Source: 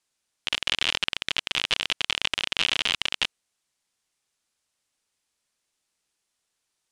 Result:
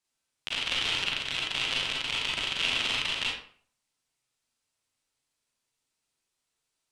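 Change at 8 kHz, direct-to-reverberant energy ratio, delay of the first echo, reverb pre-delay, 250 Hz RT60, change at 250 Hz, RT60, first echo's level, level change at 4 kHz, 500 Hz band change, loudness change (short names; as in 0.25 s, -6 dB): -3.5 dB, -4.0 dB, none, 33 ms, 0.55 s, -1.5 dB, 0.50 s, none, -3.0 dB, -2.0 dB, -2.5 dB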